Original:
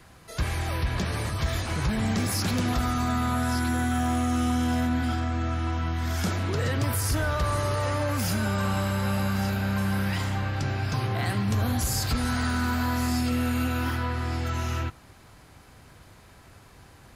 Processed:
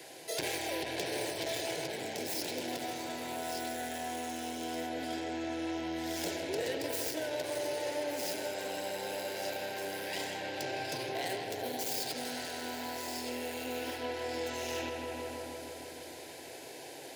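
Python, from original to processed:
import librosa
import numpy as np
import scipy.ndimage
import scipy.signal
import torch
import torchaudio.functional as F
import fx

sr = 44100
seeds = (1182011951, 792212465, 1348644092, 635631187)

p1 = fx.tracing_dist(x, sr, depth_ms=0.12)
p2 = 10.0 ** (-24.0 / 20.0) * np.tanh(p1 / 10.0 ** (-24.0 / 20.0))
p3 = scipy.signal.sosfilt(scipy.signal.butter(4, 200.0, 'highpass', fs=sr, output='sos'), p2)
p4 = p3 + fx.echo_filtered(p3, sr, ms=159, feedback_pct=76, hz=3300.0, wet_db=-6.5, dry=0)
p5 = fx.rider(p4, sr, range_db=10, speed_s=0.5)
y = fx.fixed_phaser(p5, sr, hz=500.0, stages=4)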